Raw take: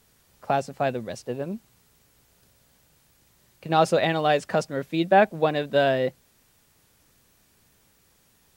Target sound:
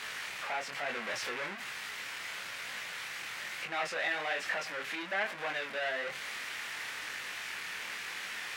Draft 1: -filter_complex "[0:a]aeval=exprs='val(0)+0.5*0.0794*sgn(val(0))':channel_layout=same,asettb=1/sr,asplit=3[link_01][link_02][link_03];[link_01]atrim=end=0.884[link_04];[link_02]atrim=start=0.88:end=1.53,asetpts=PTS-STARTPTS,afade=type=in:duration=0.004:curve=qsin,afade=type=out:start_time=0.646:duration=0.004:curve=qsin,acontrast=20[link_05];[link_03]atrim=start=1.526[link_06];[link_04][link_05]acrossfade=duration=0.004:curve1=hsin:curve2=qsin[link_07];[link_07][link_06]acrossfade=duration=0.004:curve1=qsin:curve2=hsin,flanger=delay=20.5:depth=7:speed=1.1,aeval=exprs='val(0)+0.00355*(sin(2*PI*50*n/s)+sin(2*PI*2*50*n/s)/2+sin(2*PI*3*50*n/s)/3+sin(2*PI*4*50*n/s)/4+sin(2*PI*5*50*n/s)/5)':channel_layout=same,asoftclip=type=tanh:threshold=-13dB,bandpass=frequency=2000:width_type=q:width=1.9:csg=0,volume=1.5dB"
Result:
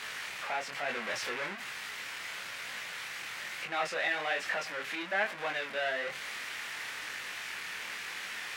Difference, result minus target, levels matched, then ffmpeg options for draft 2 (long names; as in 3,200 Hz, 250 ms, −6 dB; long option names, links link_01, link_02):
soft clipping: distortion −7 dB
-filter_complex "[0:a]aeval=exprs='val(0)+0.5*0.0794*sgn(val(0))':channel_layout=same,asettb=1/sr,asplit=3[link_01][link_02][link_03];[link_01]atrim=end=0.884[link_04];[link_02]atrim=start=0.88:end=1.53,asetpts=PTS-STARTPTS,afade=type=in:duration=0.004:curve=qsin,afade=type=out:start_time=0.646:duration=0.004:curve=qsin,acontrast=20[link_05];[link_03]atrim=start=1.526[link_06];[link_04][link_05]acrossfade=duration=0.004:curve1=hsin:curve2=qsin[link_07];[link_07][link_06]acrossfade=duration=0.004:curve1=qsin:curve2=hsin,flanger=delay=20.5:depth=7:speed=1.1,aeval=exprs='val(0)+0.00355*(sin(2*PI*50*n/s)+sin(2*PI*2*50*n/s)/2+sin(2*PI*3*50*n/s)/3+sin(2*PI*4*50*n/s)/4+sin(2*PI*5*50*n/s)/5)':channel_layout=same,asoftclip=type=tanh:threshold=-19dB,bandpass=frequency=2000:width_type=q:width=1.9:csg=0,volume=1.5dB"